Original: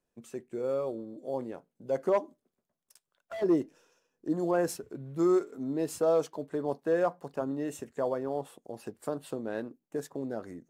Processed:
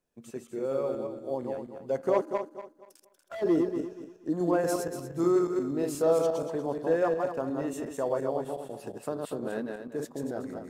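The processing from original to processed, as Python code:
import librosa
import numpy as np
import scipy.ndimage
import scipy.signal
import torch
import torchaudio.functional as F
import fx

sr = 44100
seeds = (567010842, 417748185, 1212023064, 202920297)

y = fx.reverse_delay_fb(x, sr, ms=119, feedback_pct=52, wet_db=-3)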